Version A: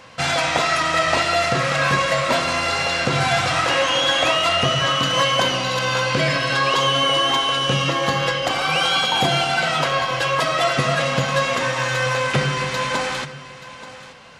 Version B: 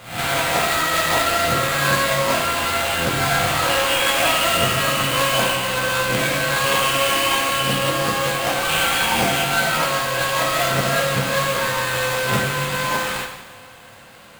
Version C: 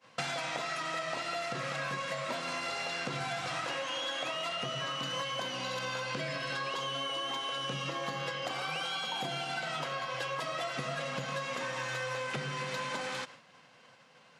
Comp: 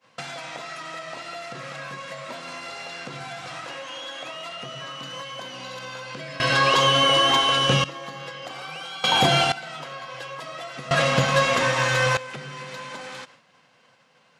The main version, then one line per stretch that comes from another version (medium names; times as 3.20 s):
C
6.40–7.84 s: from A
9.04–9.52 s: from A
10.91–12.17 s: from A
not used: B